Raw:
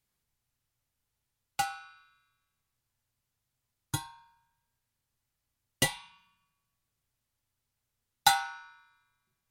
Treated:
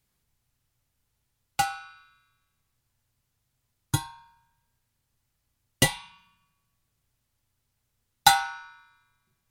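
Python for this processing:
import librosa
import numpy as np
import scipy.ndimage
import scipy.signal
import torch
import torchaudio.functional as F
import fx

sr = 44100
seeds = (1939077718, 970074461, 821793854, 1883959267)

y = fx.low_shelf(x, sr, hz=290.0, db=4.5)
y = F.gain(torch.from_numpy(y), 5.0).numpy()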